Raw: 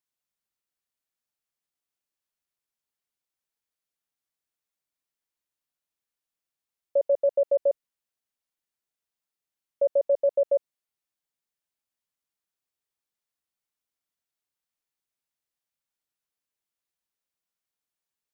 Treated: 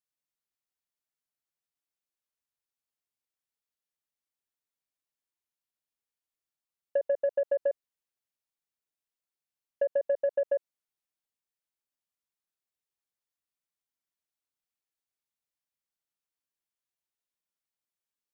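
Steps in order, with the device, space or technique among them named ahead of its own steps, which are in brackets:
drum-bus smash (transient designer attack +7 dB, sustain +1 dB; downward compressor, threshold −16 dBFS, peak gain reduction 4 dB; soft clipping −13 dBFS, distortion −21 dB)
level −5.5 dB

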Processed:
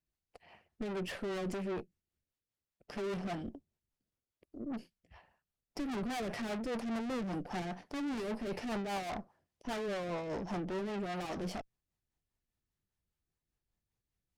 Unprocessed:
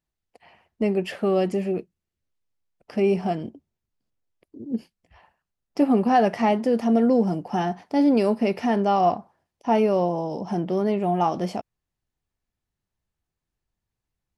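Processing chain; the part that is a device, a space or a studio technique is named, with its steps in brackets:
overdriven rotary cabinet (tube saturation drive 35 dB, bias 0.7; rotating-speaker cabinet horn 5 Hz)
level +1 dB

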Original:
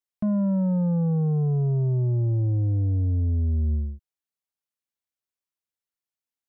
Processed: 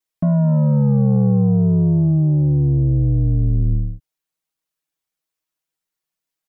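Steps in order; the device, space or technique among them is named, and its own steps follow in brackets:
ring-modulated robot voice (ring modulation 36 Hz; comb filter 6.3 ms, depth 98%)
level +7.5 dB

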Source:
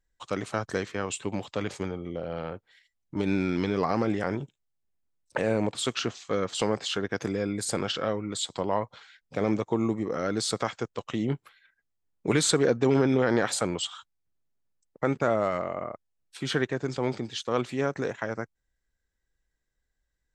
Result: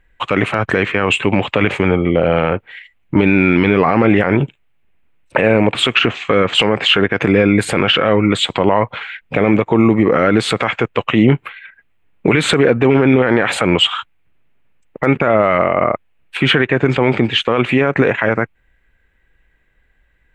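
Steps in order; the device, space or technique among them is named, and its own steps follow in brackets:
high shelf with overshoot 3,700 Hz −13.5 dB, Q 3
loud club master (downward compressor 2 to 1, threshold −27 dBFS, peak gain reduction 6 dB; hard clipping −13 dBFS, distortion −45 dB; boost into a limiter +22 dB)
level −1 dB

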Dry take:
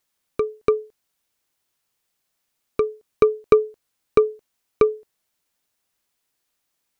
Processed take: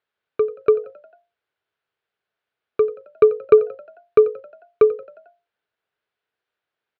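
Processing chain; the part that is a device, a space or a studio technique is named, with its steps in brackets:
frequency-shifting delay pedal into a guitar cabinet (echo with shifted repeats 89 ms, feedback 59%, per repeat +53 Hz, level −19.5 dB; loudspeaker in its box 78–3,600 Hz, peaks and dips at 180 Hz −4 dB, 270 Hz −6 dB, 430 Hz +8 dB, 660 Hz +4 dB, 1,500 Hz +8 dB)
level −4 dB

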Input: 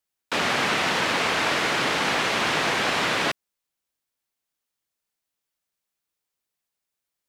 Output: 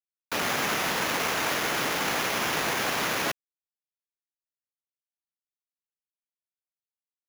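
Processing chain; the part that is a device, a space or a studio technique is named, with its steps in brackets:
early 8-bit sampler (sample-rate reduction 8,400 Hz, jitter 0%; bit reduction 8 bits)
level −4 dB

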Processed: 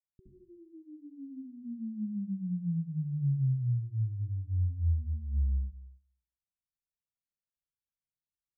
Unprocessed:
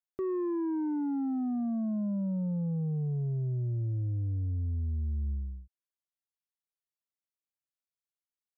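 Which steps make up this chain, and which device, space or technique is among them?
club heard from the street (brickwall limiter −33 dBFS, peak gain reduction 4 dB; low-pass filter 160 Hz 24 dB per octave; convolution reverb RT60 0.55 s, pre-delay 63 ms, DRR −4.5 dB)

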